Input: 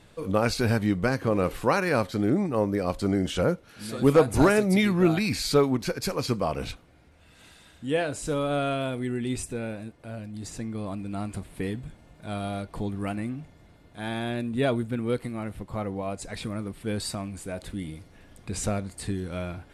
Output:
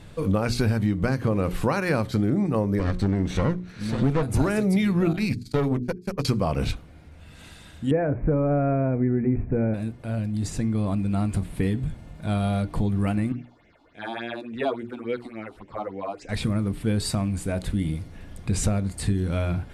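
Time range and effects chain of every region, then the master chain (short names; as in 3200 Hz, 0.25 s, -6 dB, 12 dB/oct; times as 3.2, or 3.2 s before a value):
2.79–4.23 minimum comb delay 0.5 ms + air absorption 66 m
5.13–6.25 gate -27 dBFS, range -36 dB + notches 50/100/150/200/250/300/350/400/450 Hz + tube stage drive 19 dB, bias 0.5
7.91–9.74 rippled Chebyshev low-pass 2400 Hz, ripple 3 dB + tilt shelf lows +7 dB, about 1400 Hz
13.32–16.29 three-band isolator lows -23 dB, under 330 Hz, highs -21 dB, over 5000 Hz + phaser stages 6, 3.5 Hz, lowest notch 120–1200 Hz
whole clip: tone controls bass +8 dB, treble -1 dB; notches 60/120/180/240/300/360/420 Hz; compressor, threshold -24 dBFS; gain +5 dB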